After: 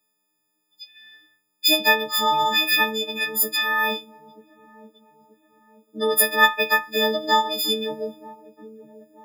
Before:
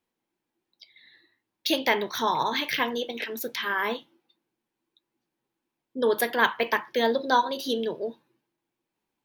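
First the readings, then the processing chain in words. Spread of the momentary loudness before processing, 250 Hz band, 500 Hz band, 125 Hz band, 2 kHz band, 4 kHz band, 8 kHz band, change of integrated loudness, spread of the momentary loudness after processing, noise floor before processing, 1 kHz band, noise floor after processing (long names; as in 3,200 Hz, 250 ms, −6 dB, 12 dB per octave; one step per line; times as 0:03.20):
9 LU, +0.5 dB, +1.5 dB, can't be measured, +7.0 dB, +9.5 dB, +12.5 dB, +6.5 dB, 9 LU, −85 dBFS, +4.0 dB, −74 dBFS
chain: every partial snapped to a pitch grid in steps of 6 semitones
delay with a low-pass on its return 931 ms, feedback 43%, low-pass 530 Hz, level −13.5 dB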